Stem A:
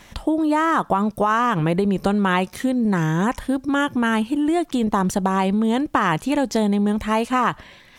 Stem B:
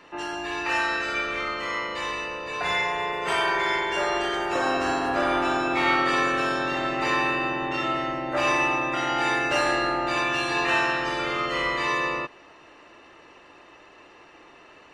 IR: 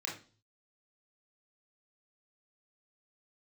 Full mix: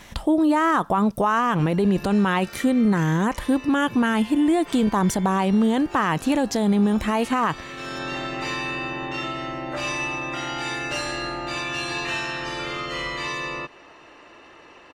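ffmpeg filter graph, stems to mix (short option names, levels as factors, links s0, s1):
-filter_complex "[0:a]volume=1.19,asplit=2[s0][s1];[1:a]acrossover=split=240|3000[s2][s3][s4];[s3]acompressor=threshold=0.0251:ratio=6[s5];[s2][s5][s4]amix=inputs=3:normalize=0,adelay=1400,volume=1.33[s6];[s1]apad=whole_len=720194[s7];[s6][s7]sidechaincompress=threshold=0.0316:ratio=4:attack=16:release=450[s8];[s0][s8]amix=inputs=2:normalize=0,alimiter=limit=0.251:level=0:latency=1:release=12"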